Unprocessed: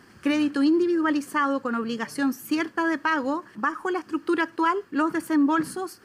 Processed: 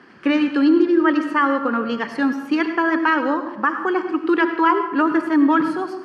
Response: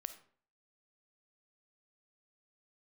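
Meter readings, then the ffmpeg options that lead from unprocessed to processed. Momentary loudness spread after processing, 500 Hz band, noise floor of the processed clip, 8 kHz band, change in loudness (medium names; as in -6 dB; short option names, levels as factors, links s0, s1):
6 LU, +6.5 dB, -35 dBFS, no reading, +6.0 dB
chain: -filter_complex "[0:a]acrossover=split=170 4200:gain=0.112 1 0.0708[s0][s1][s2];[s0][s1][s2]amix=inputs=3:normalize=0[s3];[1:a]atrim=start_sample=2205,asetrate=23373,aresample=44100[s4];[s3][s4]afir=irnorm=-1:irlink=0,volume=2"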